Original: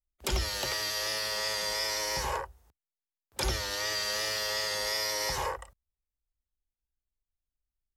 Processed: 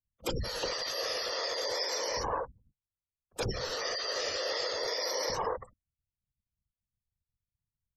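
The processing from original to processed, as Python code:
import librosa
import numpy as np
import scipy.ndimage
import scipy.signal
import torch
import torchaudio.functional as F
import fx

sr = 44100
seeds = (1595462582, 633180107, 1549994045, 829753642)

y = fx.crossing_spikes(x, sr, level_db=-38.0, at=(1.61, 2.01))
y = fx.spec_gate(y, sr, threshold_db=-15, keep='strong')
y = fx.whisperise(y, sr, seeds[0])
y = fx.graphic_eq_31(y, sr, hz=(160, 500, 1250, 2000, 10000), db=(-7, 9, 3, -4, -4))
y = F.gain(torch.from_numpy(y), -1.5).numpy()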